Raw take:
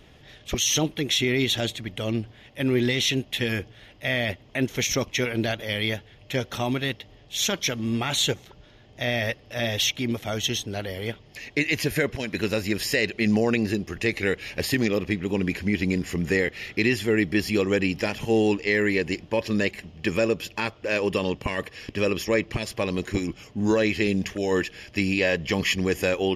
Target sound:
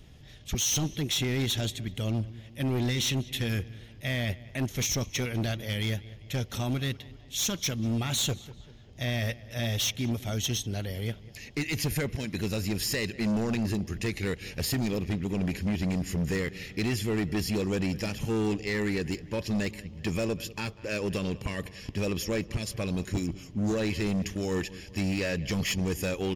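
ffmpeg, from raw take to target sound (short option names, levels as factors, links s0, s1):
-filter_complex "[0:a]bass=f=250:g=11,treble=f=4000:g=9,asplit=2[s0][s1];[s1]adelay=196,lowpass=f=3200:p=1,volume=0.1,asplit=2[s2][s3];[s3]adelay=196,lowpass=f=3200:p=1,volume=0.53,asplit=2[s4][s5];[s5]adelay=196,lowpass=f=3200:p=1,volume=0.53,asplit=2[s6][s7];[s7]adelay=196,lowpass=f=3200:p=1,volume=0.53[s8];[s0][s2][s4][s6][s8]amix=inputs=5:normalize=0,asoftclip=type=hard:threshold=0.158,volume=0.398"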